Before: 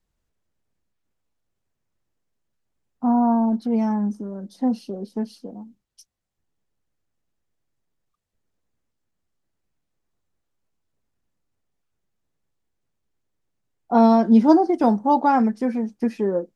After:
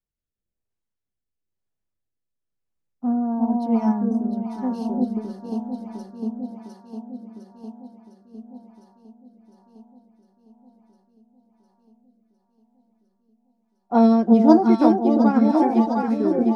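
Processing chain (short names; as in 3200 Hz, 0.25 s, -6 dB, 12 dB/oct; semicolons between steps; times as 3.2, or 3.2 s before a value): echo with dull and thin repeats by turns 0.353 s, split 810 Hz, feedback 86%, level -2 dB; rotary speaker horn 1 Hz; upward expander 1.5:1, over -40 dBFS; gain +3 dB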